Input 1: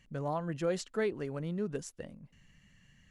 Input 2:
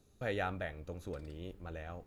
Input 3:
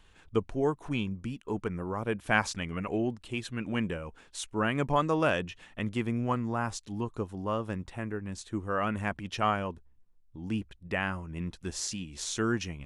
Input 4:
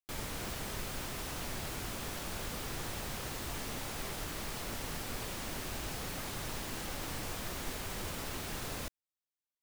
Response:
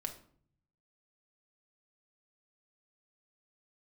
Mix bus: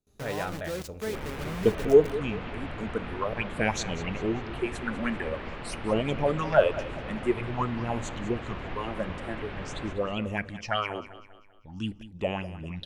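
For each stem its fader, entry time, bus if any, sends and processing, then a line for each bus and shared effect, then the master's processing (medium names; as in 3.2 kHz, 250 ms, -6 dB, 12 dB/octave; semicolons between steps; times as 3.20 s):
-5.0 dB, 0.05 s, send -10 dB, no echo send, gain riding within 5 dB 2 s; bit crusher 6-bit
-1.5 dB, 0.00 s, send -3.5 dB, no echo send, gate with hold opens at -58 dBFS
-2.0 dB, 1.30 s, send -11 dB, echo send -13.5 dB, phase shifter stages 8, 0.48 Hz, lowest notch 110–1600 Hz; sweeping bell 3 Hz 410–4600 Hz +15 dB
+2.5 dB, 1.05 s, no send, echo send -5.5 dB, low-pass 2.8 kHz 24 dB/octave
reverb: on, RT60 0.55 s, pre-delay 5 ms
echo: feedback delay 196 ms, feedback 43%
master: none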